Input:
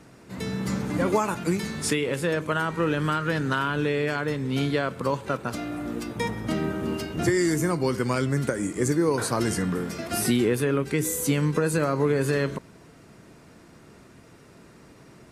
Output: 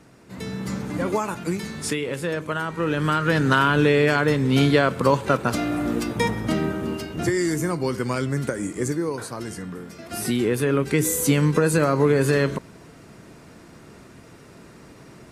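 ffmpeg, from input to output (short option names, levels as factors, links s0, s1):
-af "volume=9.44,afade=t=in:st=2.76:d=0.83:silence=0.375837,afade=t=out:st=5.88:d=1.1:silence=0.421697,afade=t=out:st=8.74:d=0.56:silence=0.421697,afade=t=in:st=9.98:d=0.94:silence=0.251189"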